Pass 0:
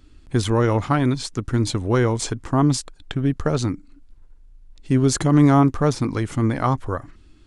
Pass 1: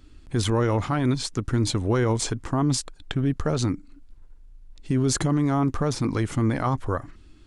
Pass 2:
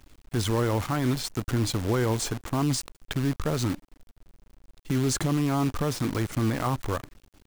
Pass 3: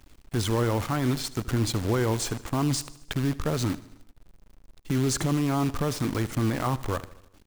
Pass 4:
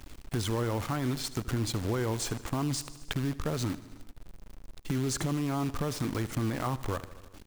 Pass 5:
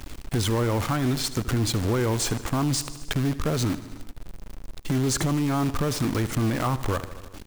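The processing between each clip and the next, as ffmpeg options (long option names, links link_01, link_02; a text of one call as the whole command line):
ffmpeg -i in.wav -af "alimiter=limit=-14.5dB:level=0:latency=1:release=33" out.wav
ffmpeg -i in.wav -af "acrusher=bits=6:dc=4:mix=0:aa=0.000001,volume=-3dB" out.wav
ffmpeg -i in.wav -af "aecho=1:1:77|154|231|308|385:0.119|0.0666|0.0373|0.0209|0.0117" out.wav
ffmpeg -i in.wav -af "acompressor=threshold=-44dB:ratio=2,volume=6.5dB" out.wav
ffmpeg -i in.wav -af "asoftclip=type=tanh:threshold=-26.5dB,volume=9dB" out.wav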